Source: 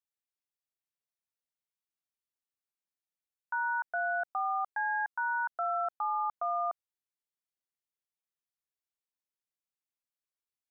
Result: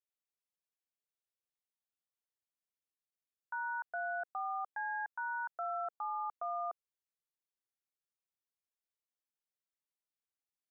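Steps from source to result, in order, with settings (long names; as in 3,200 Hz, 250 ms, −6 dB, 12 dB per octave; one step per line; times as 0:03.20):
parametric band 480 Hz +4 dB
level −7 dB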